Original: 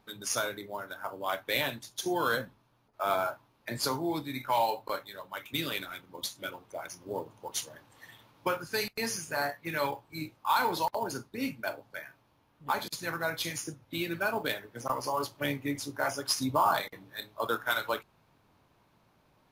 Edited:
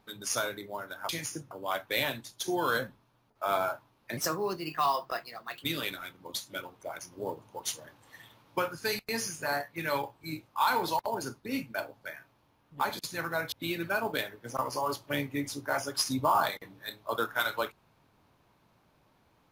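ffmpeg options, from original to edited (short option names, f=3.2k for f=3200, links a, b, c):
-filter_complex "[0:a]asplit=6[a][b][c][d][e][f];[a]atrim=end=1.092[g];[b]atrim=start=13.408:end=13.832[h];[c]atrim=start=1.088:end=3.754[i];[d]atrim=start=3.75:end=5.53,asetpts=PTS-STARTPTS,asetrate=53361,aresample=44100,atrim=end_sample=64874,asetpts=PTS-STARTPTS[j];[e]atrim=start=5.526:end=13.412[k];[f]atrim=start=13.828[l];[g][h]acrossfade=d=0.004:c1=hsin:c2=hsin[m];[m][i]acrossfade=d=0.004:c1=hsin:c2=hsin[n];[n][j]acrossfade=d=0.004:c1=hsin:c2=hsin[o];[o][k]acrossfade=d=0.004:c1=hsin:c2=hsin[p];[p][l]acrossfade=d=0.004:c1=hsin:c2=hsin"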